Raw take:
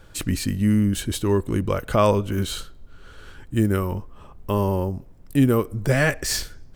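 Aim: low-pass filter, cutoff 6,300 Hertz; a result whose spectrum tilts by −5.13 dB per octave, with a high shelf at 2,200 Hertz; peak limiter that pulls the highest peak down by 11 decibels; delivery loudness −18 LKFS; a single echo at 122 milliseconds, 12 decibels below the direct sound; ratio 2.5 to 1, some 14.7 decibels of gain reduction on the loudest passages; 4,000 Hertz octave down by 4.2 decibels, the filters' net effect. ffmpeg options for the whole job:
ffmpeg -i in.wav -af "lowpass=6300,highshelf=frequency=2200:gain=3.5,equalizer=frequency=4000:width_type=o:gain=-8,acompressor=threshold=-36dB:ratio=2.5,alimiter=level_in=7dB:limit=-24dB:level=0:latency=1,volume=-7dB,aecho=1:1:122:0.251,volume=23.5dB" out.wav

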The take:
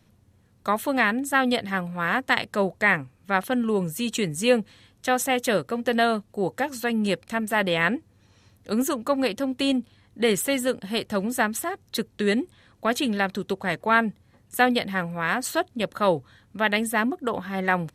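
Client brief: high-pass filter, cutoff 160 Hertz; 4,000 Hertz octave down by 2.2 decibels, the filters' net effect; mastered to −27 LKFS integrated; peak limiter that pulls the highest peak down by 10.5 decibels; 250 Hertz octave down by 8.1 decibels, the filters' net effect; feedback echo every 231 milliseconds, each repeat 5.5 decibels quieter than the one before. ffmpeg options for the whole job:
ffmpeg -i in.wav -af "highpass=160,equalizer=frequency=250:width_type=o:gain=-8.5,equalizer=frequency=4000:width_type=o:gain=-3,alimiter=limit=-15.5dB:level=0:latency=1,aecho=1:1:231|462|693|924|1155|1386|1617:0.531|0.281|0.149|0.079|0.0419|0.0222|0.0118,volume=1.5dB" out.wav

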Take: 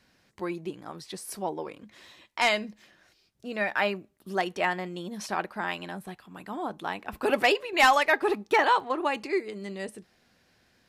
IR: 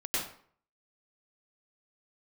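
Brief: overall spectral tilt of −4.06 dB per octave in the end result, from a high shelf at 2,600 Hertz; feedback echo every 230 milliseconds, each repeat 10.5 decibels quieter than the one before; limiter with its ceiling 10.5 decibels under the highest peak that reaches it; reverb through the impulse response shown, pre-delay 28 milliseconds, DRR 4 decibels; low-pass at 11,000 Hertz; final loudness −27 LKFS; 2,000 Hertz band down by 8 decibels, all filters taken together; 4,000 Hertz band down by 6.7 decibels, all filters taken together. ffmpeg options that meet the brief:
-filter_complex "[0:a]lowpass=11000,equalizer=frequency=2000:width_type=o:gain=-8,highshelf=frequency=2600:gain=-3,equalizer=frequency=4000:width_type=o:gain=-3,alimiter=limit=-23.5dB:level=0:latency=1,aecho=1:1:230|460|690:0.299|0.0896|0.0269,asplit=2[link_01][link_02];[1:a]atrim=start_sample=2205,adelay=28[link_03];[link_02][link_03]afir=irnorm=-1:irlink=0,volume=-10.5dB[link_04];[link_01][link_04]amix=inputs=2:normalize=0,volume=6.5dB"

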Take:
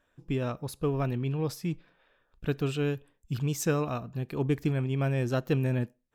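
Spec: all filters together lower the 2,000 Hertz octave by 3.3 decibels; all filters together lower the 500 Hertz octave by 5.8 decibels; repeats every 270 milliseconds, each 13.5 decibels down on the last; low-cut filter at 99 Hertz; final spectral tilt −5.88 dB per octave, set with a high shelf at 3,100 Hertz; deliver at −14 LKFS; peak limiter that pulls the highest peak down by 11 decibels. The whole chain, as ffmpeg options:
ffmpeg -i in.wav -af "highpass=99,equalizer=frequency=500:width_type=o:gain=-7,equalizer=frequency=2000:width_type=o:gain=-6.5,highshelf=frequency=3100:gain=5.5,alimiter=level_in=4.5dB:limit=-24dB:level=0:latency=1,volume=-4.5dB,aecho=1:1:270|540:0.211|0.0444,volume=23dB" out.wav

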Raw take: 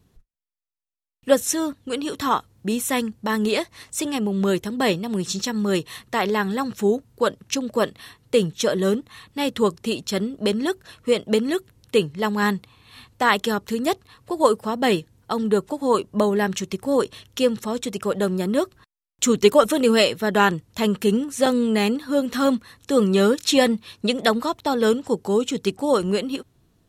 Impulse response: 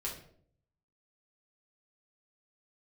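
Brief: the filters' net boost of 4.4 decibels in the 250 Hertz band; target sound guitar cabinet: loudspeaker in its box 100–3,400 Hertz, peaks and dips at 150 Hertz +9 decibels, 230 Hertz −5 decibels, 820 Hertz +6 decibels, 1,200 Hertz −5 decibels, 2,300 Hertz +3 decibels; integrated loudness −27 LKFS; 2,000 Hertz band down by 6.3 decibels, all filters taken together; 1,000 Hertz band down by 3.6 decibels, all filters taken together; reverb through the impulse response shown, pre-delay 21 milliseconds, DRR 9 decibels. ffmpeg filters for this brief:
-filter_complex "[0:a]equalizer=frequency=250:width_type=o:gain=8,equalizer=frequency=1000:width_type=o:gain=-7,equalizer=frequency=2000:width_type=o:gain=-6.5,asplit=2[link_01][link_02];[1:a]atrim=start_sample=2205,adelay=21[link_03];[link_02][link_03]afir=irnorm=-1:irlink=0,volume=-10dB[link_04];[link_01][link_04]amix=inputs=2:normalize=0,highpass=100,equalizer=frequency=150:width_type=q:width=4:gain=9,equalizer=frequency=230:width_type=q:width=4:gain=-5,equalizer=frequency=820:width_type=q:width=4:gain=6,equalizer=frequency=1200:width_type=q:width=4:gain=-5,equalizer=frequency=2300:width_type=q:width=4:gain=3,lowpass=frequency=3400:width=0.5412,lowpass=frequency=3400:width=1.3066,volume=-7dB"

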